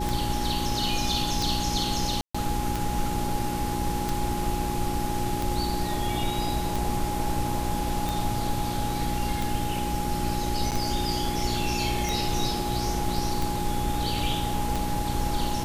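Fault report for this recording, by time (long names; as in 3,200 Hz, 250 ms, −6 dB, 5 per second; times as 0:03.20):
mains hum 60 Hz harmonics 6 −32 dBFS
scratch tick 45 rpm
whistle 830 Hz −31 dBFS
0:02.21–0:02.35: drop-out 135 ms
0:10.71–0:10.72: drop-out 8.3 ms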